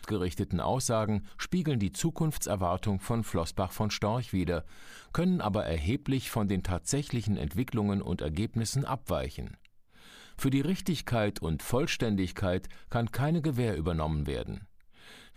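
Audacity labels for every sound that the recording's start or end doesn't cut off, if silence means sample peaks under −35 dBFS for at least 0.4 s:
5.150000	9.510000	sound
10.380000	14.570000	sound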